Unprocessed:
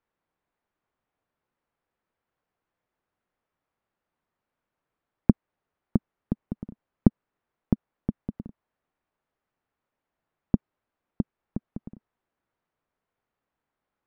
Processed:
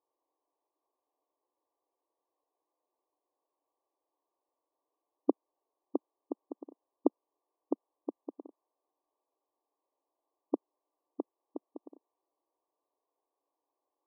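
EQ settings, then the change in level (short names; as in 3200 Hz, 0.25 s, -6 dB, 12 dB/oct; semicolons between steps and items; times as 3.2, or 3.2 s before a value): brick-wall FIR band-pass 270–1200 Hz; +1.0 dB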